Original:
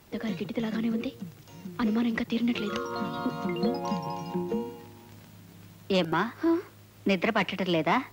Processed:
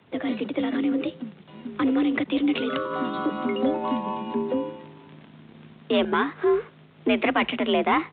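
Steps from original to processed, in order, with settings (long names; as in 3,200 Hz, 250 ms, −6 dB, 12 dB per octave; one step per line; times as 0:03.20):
leveller curve on the samples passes 1
downsampling to 8,000 Hz
frequency shifter +51 Hz
level +1 dB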